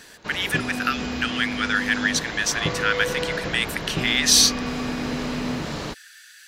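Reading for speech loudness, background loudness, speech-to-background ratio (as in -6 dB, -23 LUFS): -22.0 LUFS, -28.5 LUFS, 6.5 dB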